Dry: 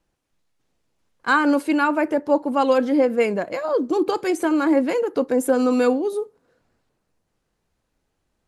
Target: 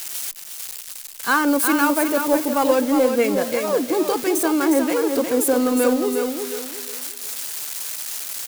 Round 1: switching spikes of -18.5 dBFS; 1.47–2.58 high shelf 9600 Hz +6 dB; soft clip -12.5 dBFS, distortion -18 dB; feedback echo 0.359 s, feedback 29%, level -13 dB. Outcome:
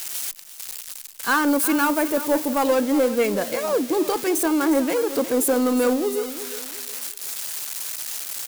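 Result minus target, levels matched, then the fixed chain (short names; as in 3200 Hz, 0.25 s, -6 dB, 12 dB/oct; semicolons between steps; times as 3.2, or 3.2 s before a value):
soft clip: distortion +10 dB; echo-to-direct -7 dB
switching spikes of -18.5 dBFS; 1.47–2.58 high shelf 9600 Hz +6 dB; soft clip -6 dBFS, distortion -28 dB; feedback echo 0.359 s, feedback 29%, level -6 dB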